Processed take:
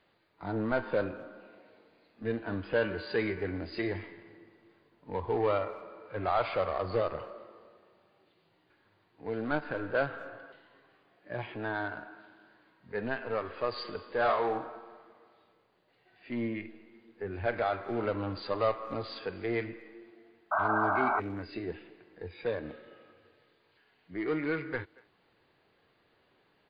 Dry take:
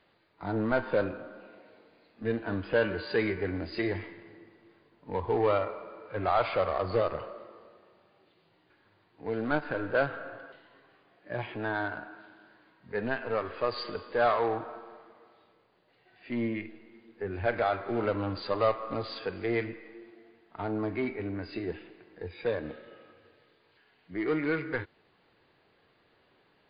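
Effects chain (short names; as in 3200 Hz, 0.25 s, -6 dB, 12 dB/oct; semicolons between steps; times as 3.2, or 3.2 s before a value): 14.17–14.69 doubler 31 ms -5.5 dB; 20.51–21.2 painted sound noise 590–1600 Hz -26 dBFS; speakerphone echo 0.23 s, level -24 dB; gain -2.5 dB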